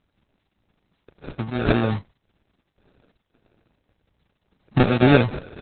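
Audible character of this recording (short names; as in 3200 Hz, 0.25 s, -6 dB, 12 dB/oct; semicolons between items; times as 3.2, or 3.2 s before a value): aliases and images of a low sample rate 1000 Hz, jitter 0%; chopped level 1.8 Hz, depth 60%, duty 70%; a quantiser's noise floor 12-bit, dither triangular; Opus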